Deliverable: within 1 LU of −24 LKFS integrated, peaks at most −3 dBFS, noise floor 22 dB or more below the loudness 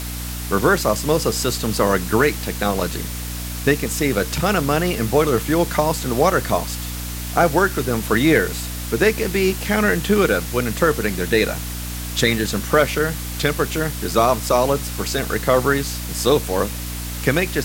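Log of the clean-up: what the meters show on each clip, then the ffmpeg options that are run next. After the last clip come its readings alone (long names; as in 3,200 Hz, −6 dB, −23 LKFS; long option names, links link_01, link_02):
mains hum 60 Hz; hum harmonics up to 300 Hz; level of the hum −27 dBFS; background noise floor −28 dBFS; target noise floor −42 dBFS; integrated loudness −20.0 LKFS; sample peak −1.5 dBFS; target loudness −24.0 LKFS
→ -af "bandreject=frequency=60:width_type=h:width=4,bandreject=frequency=120:width_type=h:width=4,bandreject=frequency=180:width_type=h:width=4,bandreject=frequency=240:width_type=h:width=4,bandreject=frequency=300:width_type=h:width=4"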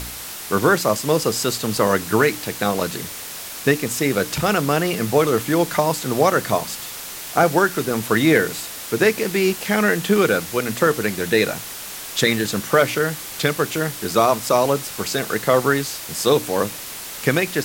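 mains hum none found; background noise floor −33 dBFS; target noise floor −42 dBFS
→ -af "afftdn=noise_reduction=9:noise_floor=-33"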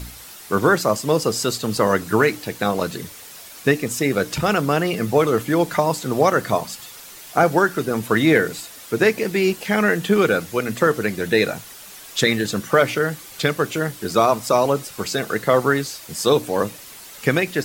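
background noise floor −40 dBFS; target noise floor −42 dBFS
→ -af "afftdn=noise_reduction=6:noise_floor=-40"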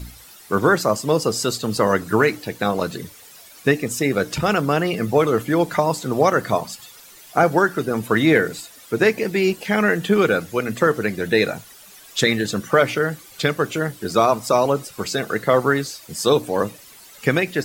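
background noise floor −45 dBFS; integrated loudness −20.0 LKFS; sample peak −2.5 dBFS; target loudness −24.0 LKFS
→ -af "volume=-4dB"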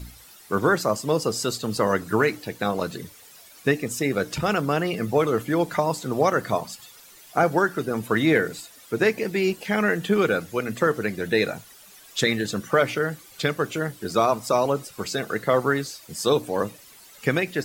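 integrated loudness −24.0 LKFS; sample peak −6.5 dBFS; background noise floor −49 dBFS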